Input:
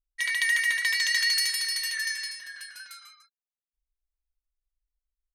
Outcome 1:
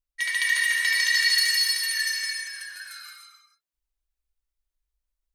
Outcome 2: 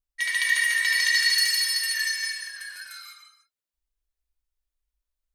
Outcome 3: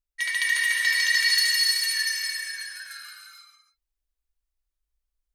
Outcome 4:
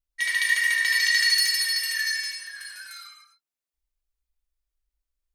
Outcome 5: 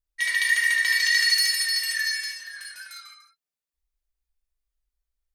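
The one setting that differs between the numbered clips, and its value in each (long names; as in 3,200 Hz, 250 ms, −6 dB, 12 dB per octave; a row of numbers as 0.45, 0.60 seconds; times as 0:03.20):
reverb whose tail is shaped and stops, gate: 340, 230, 500, 130, 90 milliseconds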